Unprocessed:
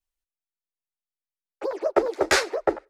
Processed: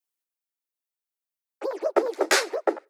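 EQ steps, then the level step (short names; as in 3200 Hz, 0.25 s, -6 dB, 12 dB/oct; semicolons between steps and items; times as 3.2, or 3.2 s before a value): brick-wall FIR high-pass 220 Hz; high shelf 10000 Hz +8.5 dB; -1.0 dB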